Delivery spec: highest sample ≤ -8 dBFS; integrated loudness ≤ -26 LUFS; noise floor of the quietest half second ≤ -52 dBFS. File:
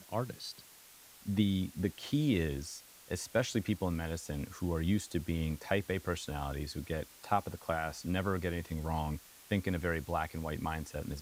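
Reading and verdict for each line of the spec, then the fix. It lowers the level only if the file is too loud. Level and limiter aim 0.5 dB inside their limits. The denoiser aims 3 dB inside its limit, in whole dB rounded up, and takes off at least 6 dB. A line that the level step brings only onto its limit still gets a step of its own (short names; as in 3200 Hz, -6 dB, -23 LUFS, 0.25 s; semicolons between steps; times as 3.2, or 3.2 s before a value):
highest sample -15.0 dBFS: OK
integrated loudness -35.5 LUFS: OK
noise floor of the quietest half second -57 dBFS: OK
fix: none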